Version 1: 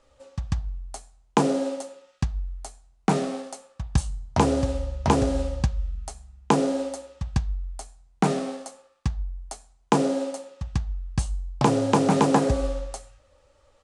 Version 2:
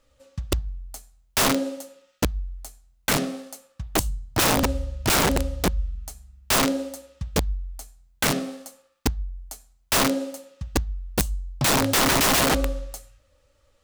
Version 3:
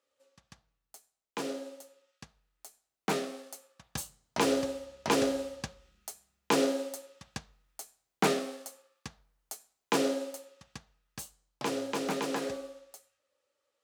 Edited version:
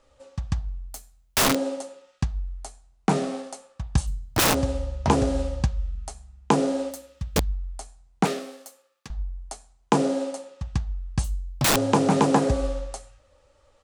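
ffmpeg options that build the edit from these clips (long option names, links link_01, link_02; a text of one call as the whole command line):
ffmpeg -i take0.wav -i take1.wav -i take2.wav -filter_complex "[1:a]asplit=4[link_01][link_02][link_03][link_04];[0:a]asplit=6[link_05][link_06][link_07][link_08][link_09][link_10];[link_05]atrim=end=0.892[link_11];[link_01]atrim=start=0.888:end=1.552[link_12];[link_06]atrim=start=1.548:end=4.08[link_13];[link_02]atrim=start=4.06:end=4.55[link_14];[link_07]atrim=start=4.53:end=6.912[link_15];[link_03]atrim=start=6.908:end=7.512[link_16];[link_08]atrim=start=7.508:end=8.252[link_17];[2:a]atrim=start=8.248:end=9.102[link_18];[link_09]atrim=start=9.098:end=11.242[link_19];[link_04]atrim=start=11.238:end=11.762[link_20];[link_10]atrim=start=11.758[link_21];[link_11][link_12]acrossfade=duration=0.004:curve1=hsin:curve2=hsin[link_22];[link_22][link_13]acrossfade=duration=0.004:curve1=hsin:curve2=hsin[link_23];[link_23][link_14]acrossfade=duration=0.02:curve1=tri:curve2=tri[link_24];[link_24][link_15]acrossfade=duration=0.02:curve1=tri:curve2=tri[link_25];[link_25][link_16]acrossfade=duration=0.004:curve1=hsin:curve2=hsin[link_26];[link_26][link_17]acrossfade=duration=0.004:curve1=hsin:curve2=hsin[link_27];[link_27][link_18]acrossfade=duration=0.004:curve1=hsin:curve2=hsin[link_28];[link_28][link_19]acrossfade=duration=0.004:curve1=hsin:curve2=hsin[link_29];[link_29][link_20]acrossfade=duration=0.004:curve1=hsin:curve2=hsin[link_30];[link_30][link_21]acrossfade=duration=0.004:curve1=hsin:curve2=hsin" out.wav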